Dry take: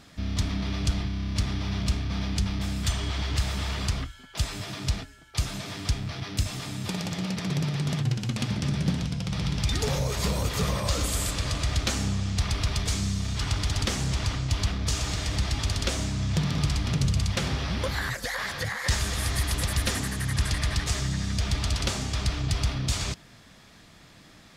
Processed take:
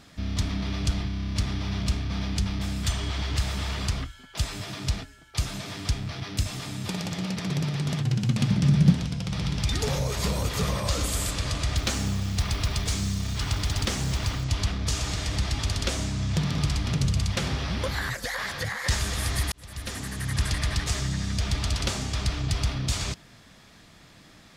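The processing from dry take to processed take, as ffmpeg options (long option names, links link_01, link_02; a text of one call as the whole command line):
ffmpeg -i in.wav -filter_complex "[0:a]asettb=1/sr,asplit=3[link_01][link_02][link_03];[link_01]atrim=end=8.134[link_04];[link_02]atrim=start=8.13:end=8.93,asetpts=PTS-STARTPTS,afade=type=in:duration=0.004:curve=qsin,afade=type=out:start_time=0.796:duration=0.004:curve=qsin,equalizer=frequency=160:width_type=o:width=0.77:gain=10.5[link_05];[link_03]atrim=start=8.926[link_06];[link_04][link_05]acrossfade=duration=0.004:curve1=hsin:curve2=qsin[link_07];[link_07][link_06]acrossfade=duration=0.004:curve1=qsin:curve2=hsin,asettb=1/sr,asplit=3[link_08][link_09][link_10];[link_08]atrim=end=11.774[link_11];[link_09]atrim=start=11.77:end=14.44,asetpts=PTS-STARTPTS,afade=type=in:duration=0.004:curve=qsin,afade=type=out:start_time=2.666:duration=0.004:curve=qsin,acrusher=bits=6:mode=log:mix=0:aa=0.000001[link_12];[link_10]atrim=start=14.436[link_13];[link_11][link_12]acrossfade=duration=0.004:curve1=hsin:curve2=qsin[link_14];[link_14][link_13]acrossfade=duration=0.004:curve1=qsin:curve2=hsin,asplit=2[link_15][link_16];[link_15]atrim=end=19.52,asetpts=PTS-STARTPTS,afade=type=out:start_time=19.516:duration=0.004:curve=hsin[link_17];[link_16]atrim=start=19.52,asetpts=PTS-STARTPTS,afade=type=in:duration=0.87[link_18];[link_17][link_18]concat=n=2:v=0:a=1" out.wav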